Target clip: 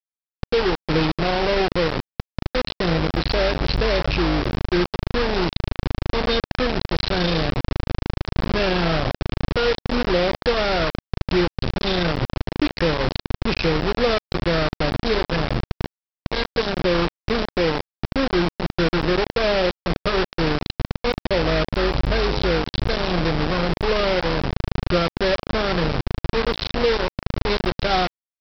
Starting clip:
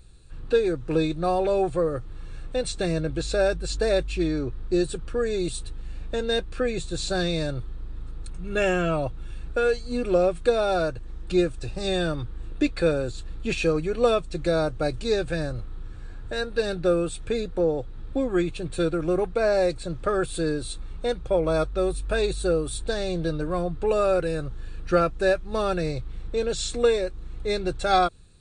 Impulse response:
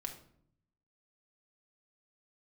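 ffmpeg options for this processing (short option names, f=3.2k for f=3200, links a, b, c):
-af "lowshelf=f=61:g=-3.5,afftdn=nr=14:nf=-38,lowshelf=f=260:g=10,bandreject=f=140.5:t=h:w=4,bandreject=f=281:t=h:w=4,bandreject=f=421.5:t=h:w=4,bandreject=f=562:t=h:w=4,bandreject=f=702.5:t=h:w=4,acompressor=threshold=-26dB:ratio=1.5,aresample=11025,acrusher=bits=3:mix=0:aa=0.000001,aresample=44100,volume=2dB"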